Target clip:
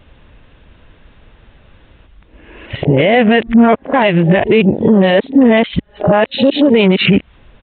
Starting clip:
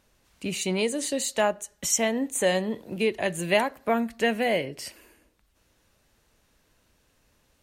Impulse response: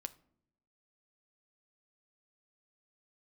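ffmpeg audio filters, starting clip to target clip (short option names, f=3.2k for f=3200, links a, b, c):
-af "areverse,afwtdn=0.0126,lowshelf=f=140:g=8.5,acompressor=threshold=-37dB:ratio=8,aresample=8000,aresample=44100,alimiter=level_in=36dB:limit=-1dB:release=50:level=0:latency=1,volume=-1dB"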